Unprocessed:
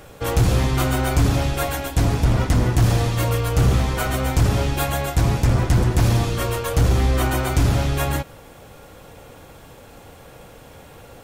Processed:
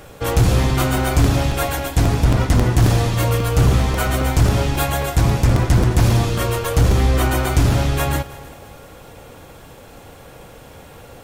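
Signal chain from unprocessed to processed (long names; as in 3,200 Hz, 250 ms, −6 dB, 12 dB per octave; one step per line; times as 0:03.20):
on a send: echo machine with several playback heads 106 ms, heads second and third, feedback 47%, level −21 dB
on the sum: regular buffer underruns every 0.27 s, samples 128, repeat, from 0:00.70
level +2.5 dB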